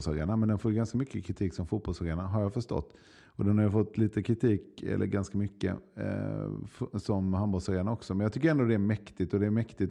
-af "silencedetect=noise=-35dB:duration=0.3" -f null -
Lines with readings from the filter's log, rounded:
silence_start: 2.81
silence_end: 3.39 | silence_duration: 0.58